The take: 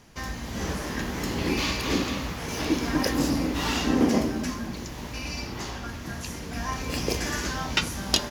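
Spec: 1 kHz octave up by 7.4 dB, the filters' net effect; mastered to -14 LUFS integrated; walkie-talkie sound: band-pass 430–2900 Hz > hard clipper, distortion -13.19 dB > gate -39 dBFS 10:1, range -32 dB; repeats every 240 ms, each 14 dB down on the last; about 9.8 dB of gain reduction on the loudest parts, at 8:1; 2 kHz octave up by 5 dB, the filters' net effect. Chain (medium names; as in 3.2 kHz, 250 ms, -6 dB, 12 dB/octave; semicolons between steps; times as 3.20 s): peaking EQ 1 kHz +8 dB; peaking EQ 2 kHz +5 dB; compression 8:1, threshold -25 dBFS; band-pass 430–2900 Hz; feedback delay 240 ms, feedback 20%, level -14 dB; hard clipper -28.5 dBFS; gate -39 dBFS 10:1, range -32 dB; trim +19.5 dB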